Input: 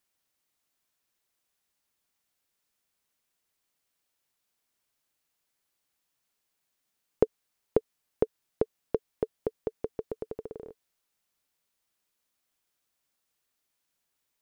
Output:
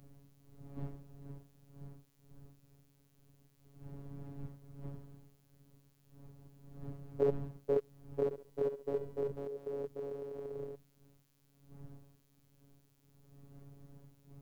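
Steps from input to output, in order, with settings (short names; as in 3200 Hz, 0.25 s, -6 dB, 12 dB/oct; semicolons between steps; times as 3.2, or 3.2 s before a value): stepped spectrum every 0.1 s; wind noise 180 Hz -55 dBFS; robotiser 140 Hz; 8.24–9.32 flutter echo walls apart 11.9 m, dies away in 0.41 s; gain +6.5 dB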